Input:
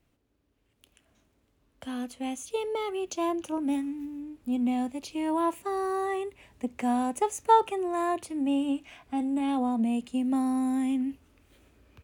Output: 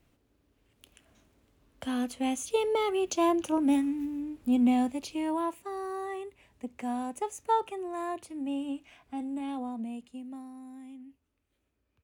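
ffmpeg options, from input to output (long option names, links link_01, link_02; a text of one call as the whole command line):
ffmpeg -i in.wav -af "volume=3.5dB,afade=type=out:start_time=4.7:duration=0.84:silence=0.316228,afade=type=out:start_time=9.32:duration=1.19:silence=0.237137" out.wav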